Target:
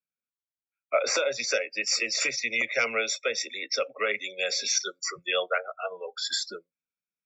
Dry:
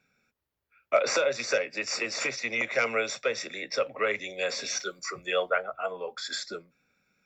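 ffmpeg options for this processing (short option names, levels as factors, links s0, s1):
-filter_complex "[0:a]acrossover=split=120|770|2600[s0][s1][s2][s3];[s3]dynaudnorm=f=450:g=5:m=2.66[s4];[s0][s1][s2][s4]amix=inputs=4:normalize=0,afftdn=nr=29:nf=-35,volume=0.841"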